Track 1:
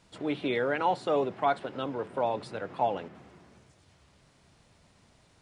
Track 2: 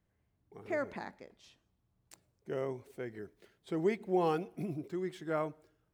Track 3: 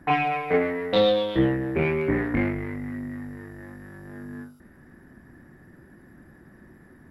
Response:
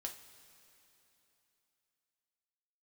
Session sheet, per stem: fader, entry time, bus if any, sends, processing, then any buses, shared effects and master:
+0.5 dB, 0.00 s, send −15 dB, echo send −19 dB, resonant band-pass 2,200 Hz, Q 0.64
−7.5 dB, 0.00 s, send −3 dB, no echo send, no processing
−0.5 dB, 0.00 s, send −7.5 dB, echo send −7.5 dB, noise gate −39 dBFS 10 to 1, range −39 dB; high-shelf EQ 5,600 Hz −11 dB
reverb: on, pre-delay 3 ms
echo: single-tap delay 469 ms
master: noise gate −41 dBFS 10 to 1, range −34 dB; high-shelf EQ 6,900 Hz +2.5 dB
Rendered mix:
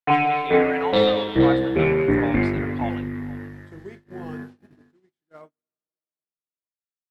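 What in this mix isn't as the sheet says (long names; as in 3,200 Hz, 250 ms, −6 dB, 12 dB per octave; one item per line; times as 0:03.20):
stem 2 −7.5 dB → −16.0 dB
reverb return +7.0 dB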